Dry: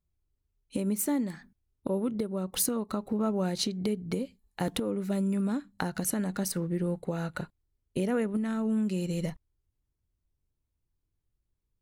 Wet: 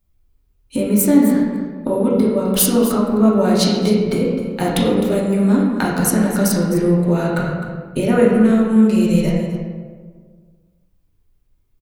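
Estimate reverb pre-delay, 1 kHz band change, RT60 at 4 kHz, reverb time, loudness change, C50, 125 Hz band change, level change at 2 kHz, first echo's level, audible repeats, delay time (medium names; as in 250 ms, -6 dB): 3 ms, +14.5 dB, 0.90 s, 1.6 s, +15.0 dB, 0.5 dB, +14.5 dB, +14.5 dB, -12.0 dB, 1, 258 ms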